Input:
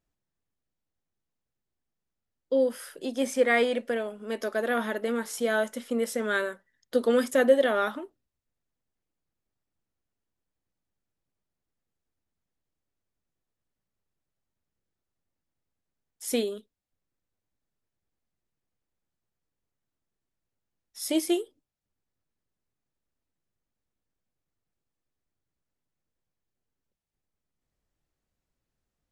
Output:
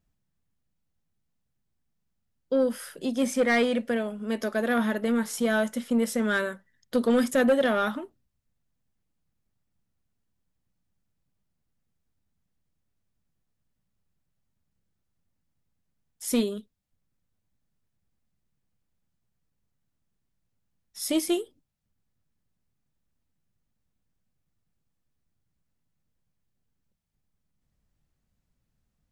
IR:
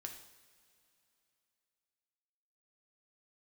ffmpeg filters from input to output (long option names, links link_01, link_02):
-filter_complex "[0:a]lowshelf=frequency=260:width_type=q:width=1.5:gain=6.5,asplit=2[link_01][link_02];[link_02]aeval=exprs='0.335*sin(PI/2*2.51*val(0)/0.335)':channel_layout=same,volume=-10dB[link_03];[link_01][link_03]amix=inputs=2:normalize=0,volume=-5dB"